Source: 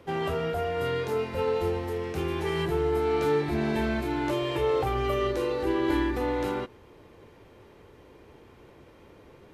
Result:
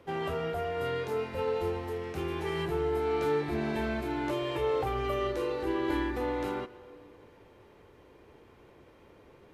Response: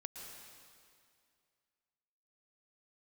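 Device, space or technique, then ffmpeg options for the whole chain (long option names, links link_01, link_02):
filtered reverb send: -filter_complex "[0:a]asplit=2[link_01][link_02];[link_02]highpass=240,lowpass=3900[link_03];[1:a]atrim=start_sample=2205[link_04];[link_03][link_04]afir=irnorm=-1:irlink=0,volume=-8dB[link_05];[link_01][link_05]amix=inputs=2:normalize=0,volume=-5dB"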